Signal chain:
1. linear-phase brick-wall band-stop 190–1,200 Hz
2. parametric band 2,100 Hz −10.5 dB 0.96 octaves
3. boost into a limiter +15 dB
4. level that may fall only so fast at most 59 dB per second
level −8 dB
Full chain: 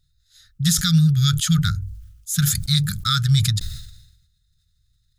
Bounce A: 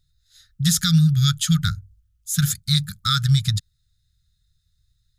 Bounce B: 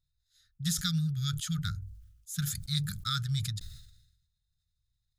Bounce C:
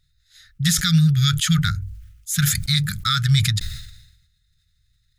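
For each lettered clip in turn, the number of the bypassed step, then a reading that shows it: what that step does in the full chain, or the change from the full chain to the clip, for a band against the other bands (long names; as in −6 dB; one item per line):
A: 4, change in momentary loudness spread −7 LU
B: 3, change in crest factor +2.5 dB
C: 2, 2 kHz band +5.5 dB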